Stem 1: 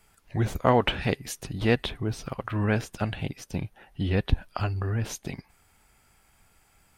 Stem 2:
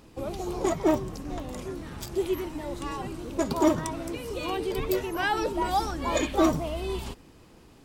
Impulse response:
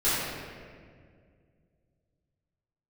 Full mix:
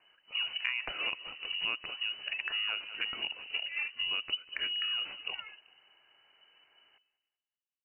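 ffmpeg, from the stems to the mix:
-filter_complex "[0:a]volume=-2.5dB,asplit=3[link_01][link_02][link_03];[link_02]volume=-20dB[link_04];[1:a]adelay=150,volume=-11.5dB,afade=type=out:start_time=3.87:duration=0.64:silence=0.251189[link_05];[link_03]apad=whole_len=352602[link_06];[link_05][link_06]sidechaingate=range=-31dB:threshold=-56dB:ratio=16:detection=peak[link_07];[link_04]aecho=0:1:193|386|579|772|965|1158:1|0.4|0.16|0.064|0.0256|0.0102[link_08];[link_01][link_07][link_08]amix=inputs=3:normalize=0,lowpass=frequency=2600:width_type=q:width=0.5098,lowpass=frequency=2600:width_type=q:width=0.6013,lowpass=frequency=2600:width_type=q:width=0.9,lowpass=frequency=2600:width_type=q:width=2.563,afreqshift=-3000,acompressor=threshold=-31dB:ratio=6"

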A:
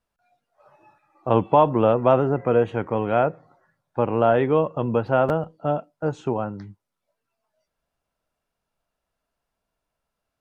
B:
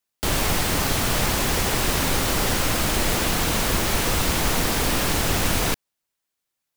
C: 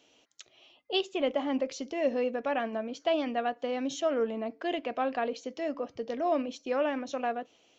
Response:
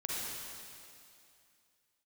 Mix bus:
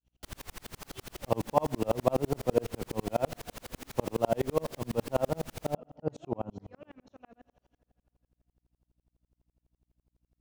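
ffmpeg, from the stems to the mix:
-filter_complex "[0:a]equalizer=frequency=1500:width=1.8:gain=-10.5,volume=-1dB,asplit=2[link_01][link_02];[link_02]volume=-19.5dB[link_03];[1:a]volume=-14.5dB[link_04];[2:a]asubboost=boost=3:cutoff=230,volume=-14dB,asplit=2[link_05][link_06];[link_06]volume=-15.5dB[link_07];[3:a]atrim=start_sample=2205[link_08];[link_03][link_07]amix=inputs=2:normalize=0[link_09];[link_09][link_08]afir=irnorm=-1:irlink=0[link_10];[link_01][link_04][link_05][link_10]amix=inputs=4:normalize=0,aeval=exprs='val(0)+0.000794*(sin(2*PI*60*n/s)+sin(2*PI*2*60*n/s)/2+sin(2*PI*3*60*n/s)/3+sin(2*PI*4*60*n/s)/4+sin(2*PI*5*60*n/s)/5)':channel_layout=same,aeval=exprs='val(0)*pow(10,-39*if(lt(mod(-12*n/s,1),2*abs(-12)/1000),1-mod(-12*n/s,1)/(2*abs(-12)/1000),(mod(-12*n/s,1)-2*abs(-12)/1000)/(1-2*abs(-12)/1000))/20)':channel_layout=same"

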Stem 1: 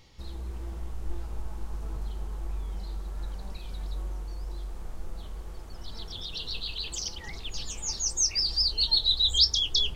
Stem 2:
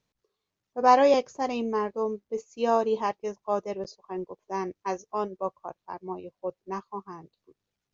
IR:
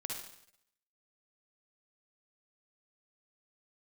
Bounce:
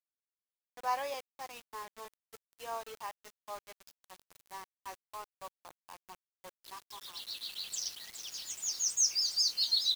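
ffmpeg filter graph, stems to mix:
-filter_complex "[0:a]aderivative,adelay=800,volume=-1dB,asplit=2[link_01][link_02];[link_02]volume=-9.5dB[link_03];[1:a]highpass=960,volume=-10dB,asplit=2[link_04][link_05];[link_05]apad=whole_len=474467[link_06];[link_01][link_06]sidechaincompress=threshold=-54dB:ratio=5:attack=48:release=428[link_07];[link_03]aecho=0:1:416|832|1248|1664|2080:1|0.32|0.102|0.0328|0.0105[link_08];[link_07][link_04][link_08]amix=inputs=3:normalize=0,equalizer=frequency=120:width=2:gain=-8.5,acrusher=bits=7:mix=0:aa=0.000001"

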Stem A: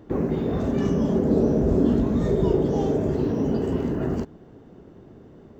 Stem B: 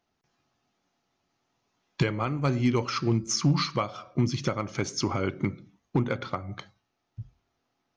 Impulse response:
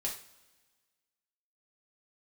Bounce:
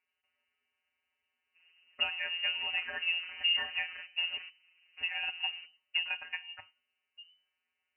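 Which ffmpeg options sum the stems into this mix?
-filter_complex "[0:a]flanger=delay=3.8:depth=9.7:regen=50:speed=1.9:shape=sinusoidal,aeval=exprs='0.0562*(abs(mod(val(0)/0.0562+3,4)-2)-1)':channel_layout=same,adelay=1450,volume=-13dB[link_01];[1:a]volume=-4dB,asplit=3[link_02][link_03][link_04];[link_02]atrim=end=4.38,asetpts=PTS-STARTPTS,afade=type=out:start_time=4.376:duration=0.004:curve=hsin[link_05];[link_03]atrim=start=4.38:end=4.97,asetpts=PTS-STARTPTS,volume=0[link_06];[link_04]atrim=start=4.97,asetpts=PTS-STARTPTS,afade=type=in:duration=0.004:curve=hsin[link_07];[link_05][link_06][link_07]concat=n=3:v=0:a=1,asplit=2[link_08][link_09];[link_09]apad=whole_len=310667[link_10];[link_01][link_10]sidechaingate=range=-20dB:threshold=-47dB:ratio=16:detection=peak[link_11];[link_11][link_08]amix=inputs=2:normalize=0,afftfilt=real='hypot(re,im)*cos(PI*b)':imag='0':win_size=1024:overlap=0.75,lowpass=frequency=2600:width_type=q:width=0.5098,lowpass=frequency=2600:width_type=q:width=0.6013,lowpass=frequency=2600:width_type=q:width=0.9,lowpass=frequency=2600:width_type=q:width=2.563,afreqshift=-3000"

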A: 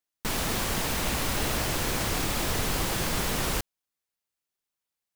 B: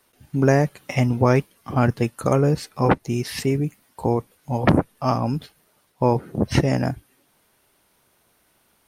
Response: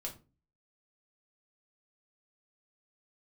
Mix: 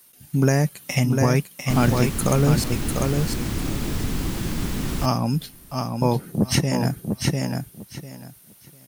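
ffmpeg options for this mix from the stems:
-filter_complex "[0:a]lowshelf=frequency=390:width_type=q:width=1.5:gain=9.5,adelay=1450,volume=-4.5dB,asplit=2[link_01][link_02];[link_02]volume=-23.5dB[link_03];[1:a]equalizer=frequency=170:width_type=o:width=1.1:gain=9,crystalizer=i=5:c=0,volume=-4dB,asplit=3[link_04][link_05][link_06];[link_04]atrim=end=2.64,asetpts=PTS-STARTPTS,afade=type=out:start_time=2.636:duration=0.004:curve=hsin[link_07];[link_05]atrim=start=2.64:end=4.91,asetpts=PTS-STARTPTS,volume=0[link_08];[link_06]atrim=start=4.91,asetpts=PTS-STARTPTS,afade=type=in:duration=0.004:curve=hsin[link_09];[link_07][link_08][link_09]concat=n=3:v=0:a=1,asplit=2[link_10][link_11];[link_11]volume=-5.5dB[link_12];[link_03][link_12]amix=inputs=2:normalize=0,aecho=0:1:698|1396|2094:1|0.2|0.04[link_13];[link_01][link_10][link_13]amix=inputs=3:normalize=0,alimiter=limit=-6.5dB:level=0:latency=1:release=455"

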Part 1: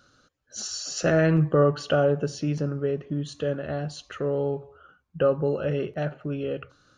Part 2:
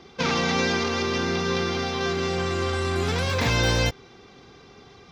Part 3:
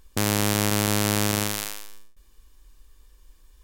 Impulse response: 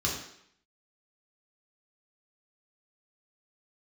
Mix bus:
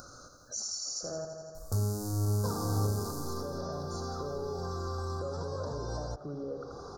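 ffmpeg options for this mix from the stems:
-filter_complex "[0:a]acompressor=threshold=-33dB:ratio=2,alimiter=level_in=1dB:limit=-24dB:level=0:latency=1,volume=-1dB,volume=-3dB,asplit=3[link_01][link_02][link_03];[link_01]atrim=end=1.25,asetpts=PTS-STARTPTS,afade=type=out:start_time=1.246:duration=0.004:curve=hsin[link_04];[link_02]atrim=start=1.25:end=2.85,asetpts=PTS-STARTPTS,volume=0[link_05];[link_03]atrim=start=2.85,asetpts=PTS-STARTPTS,afade=type=in:duration=0.004:curve=hsin[link_06];[link_04][link_05][link_06]concat=n=3:v=0:a=1,asplit=3[link_07][link_08][link_09];[link_08]volume=-7.5dB[link_10];[1:a]lowpass=4400,acrossover=split=250|1400[link_11][link_12][link_13];[link_11]acompressor=threshold=-31dB:ratio=4[link_14];[link_12]acompressor=threshold=-37dB:ratio=4[link_15];[link_13]acompressor=threshold=-37dB:ratio=4[link_16];[link_14][link_15][link_16]amix=inputs=3:normalize=0,adelay=2250,volume=0dB[link_17];[2:a]acrossover=split=360[link_18][link_19];[link_19]acompressor=threshold=-43dB:ratio=2[link_20];[link_18][link_20]amix=inputs=2:normalize=0,asplit=2[link_21][link_22];[link_22]adelay=3.7,afreqshift=-1.8[link_23];[link_21][link_23]amix=inputs=2:normalize=1,adelay=1550,volume=-3.5dB,asplit=2[link_24][link_25];[link_25]volume=-8.5dB[link_26];[link_09]apad=whole_len=324735[link_27];[link_17][link_27]sidechaincompress=threshold=-39dB:ratio=8:attack=49:release=174[link_28];[3:a]atrim=start_sample=2205[link_29];[link_26][link_29]afir=irnorm=-1:irlink=0[link_30];[link_10]aecho=0:1:83|166|249|332|415|498|581|664|747:1|0.58|0.336|0.195|0.113|0.0656|0.0381|0.0221|0.0128[link_31];[link_07][link_28][link_24][link_30][link_31]amix=inputs=5:normalize=0,equalizer=frequency=200:width_type=o:width=2.4:gain=-9,acompressor=mode=upward:threshold=-31dB:ratio=2.5,asuperstop=centerf=2500:order=8:qfactor=0.71"

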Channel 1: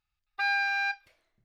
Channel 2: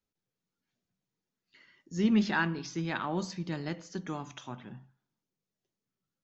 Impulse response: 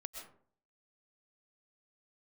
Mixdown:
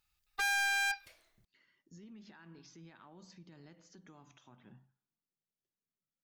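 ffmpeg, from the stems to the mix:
-filter_complex "[0:a]highshelf=frequency=4400:gain=11,asoftclip=type=hard:threshold=-32dB,volume=1.5dB[link_01];[1:a]acompressor=threshold=-31dB:ratio=6,alimiter=level_in=11.5dB:limit=-24dB:level=0:latency=1:release=160,volume=-11.5dB,volume=-11.5dB[link_02];[link_01][link_02]amix=inputs=2:normalize=0"

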